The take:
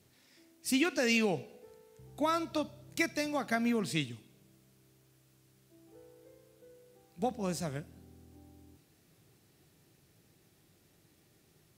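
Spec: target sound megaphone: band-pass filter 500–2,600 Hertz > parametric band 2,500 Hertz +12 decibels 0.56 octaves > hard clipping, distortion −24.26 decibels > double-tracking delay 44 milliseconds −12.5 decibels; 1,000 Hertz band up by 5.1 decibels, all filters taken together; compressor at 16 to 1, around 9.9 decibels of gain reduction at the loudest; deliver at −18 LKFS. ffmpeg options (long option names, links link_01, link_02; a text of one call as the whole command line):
ffmpeg -i in.wav -filter_complex "[0:a]equalizer=frequency=1000:width_type=o:gain=7,acompressor=threshold=-33dB:ratio=16,highpass=500,lowpass=2600,equalizer=frequency=2500:width_type=o:width=0.56:gain=12,asoftclip=type=hard:threshold=-26dB,asplit=2[link_01][link_02];[link_02]adelay=44,volume=-12.5dB[link_03];[link_01][link_03]amix=inputs=2:normalize=0,volume=21dB" out.wav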